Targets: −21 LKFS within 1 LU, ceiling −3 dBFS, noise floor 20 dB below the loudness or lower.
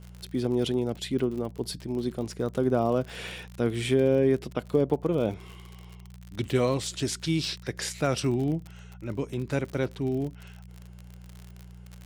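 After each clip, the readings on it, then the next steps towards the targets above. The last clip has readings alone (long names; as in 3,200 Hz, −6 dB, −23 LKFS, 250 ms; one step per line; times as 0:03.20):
crackle rate 53 per second; mains hum 60 Hz; hum harmonics up to 180 Hz; level of the hum −45 dBFS; integrated loudness −28.5 LKFS; sample peak −10.5 dBFS; target loudness −21.0 LKFS
→ click removal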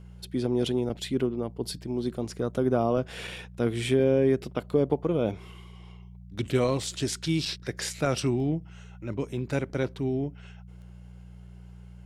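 crackle rate 0.17 per second; mains hum 60 Hz; hum harmonics up to 180 Hz; level of the hum −45 dBFS
→ hum removal 60 Hz, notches 3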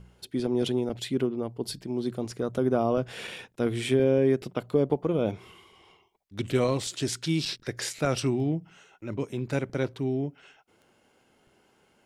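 mains hum none found; integrated loudness −28.5 LKFS; sample peak −11.0 dBFS; target loudness −21.0 LKFS
→ level +7.5 dB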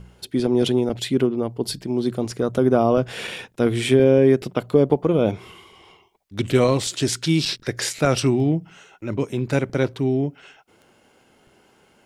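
integrated loudness −21.0 LKFS; sample peak −3.5 dBFS; background noise floor −58 dBFS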